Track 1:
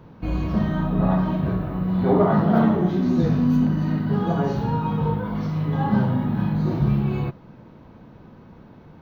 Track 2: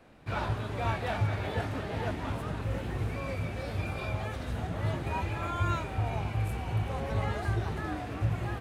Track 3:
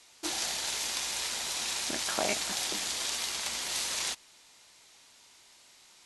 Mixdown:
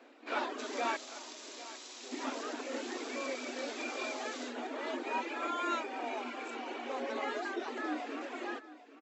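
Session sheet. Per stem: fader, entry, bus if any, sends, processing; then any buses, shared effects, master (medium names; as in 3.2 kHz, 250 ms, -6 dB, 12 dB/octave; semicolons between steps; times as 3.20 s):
-17.5 dB, 0.00 s, no send, no echo send, high-pass 390 Hz 12 dB/octave; compression, threshold -30 dBFS, peak gain reduction 13.5 dB
+2.0 dB, 0.00 s, muted 0.97–2.12 s, no send, echo send -16 dB, reverb removal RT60 0.62 s
-9.5 dB, 0.35 s, no send, no echo send, compression, threshold -36 dBFS, peak gain reduction 10.5 dB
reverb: none
echo: delay 796 ms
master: FFT band-pass 230–7800 Hz; peaking EQ 860 Hz -2.5 dB 1.4 oct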